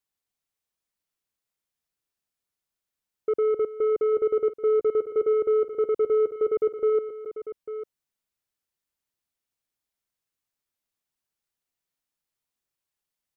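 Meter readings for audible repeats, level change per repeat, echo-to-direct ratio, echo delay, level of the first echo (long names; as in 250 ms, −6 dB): 2, repeats not evenly spaced, −9.5 dB, 260 ms, −15.5 dB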